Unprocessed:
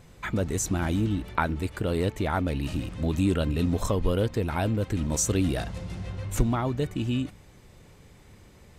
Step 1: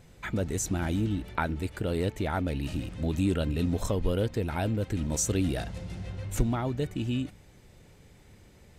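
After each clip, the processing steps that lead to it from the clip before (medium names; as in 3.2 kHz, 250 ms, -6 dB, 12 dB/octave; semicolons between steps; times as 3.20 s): peaking EQ 1.1 kHz -5.5 dB 0.34 oct; trim -2.5 dB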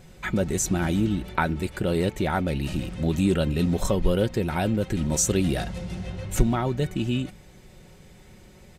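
comb 5.4 ms, depth 42%; trim +5 dB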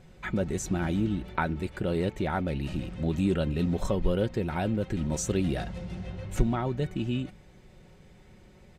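low-pass 3.4 kHz 6 dB/octave; trim -4 dB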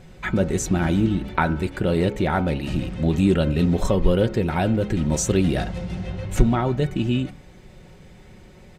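de-hum 69.03 Hz, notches 23; trim +8 dB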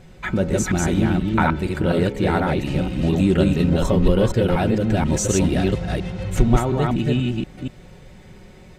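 chunks repeated in reverse 240 ms, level -1.5 dB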